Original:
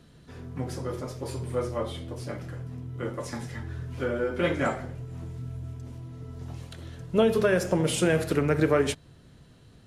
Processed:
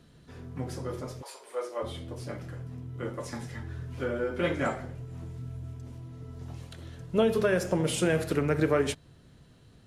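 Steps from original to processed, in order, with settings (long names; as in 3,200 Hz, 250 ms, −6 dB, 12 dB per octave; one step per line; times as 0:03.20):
0:01.21–0:01.82: high-pass filter 740 Hz → 330 Hz 24 dB per octave
level −2.5 dB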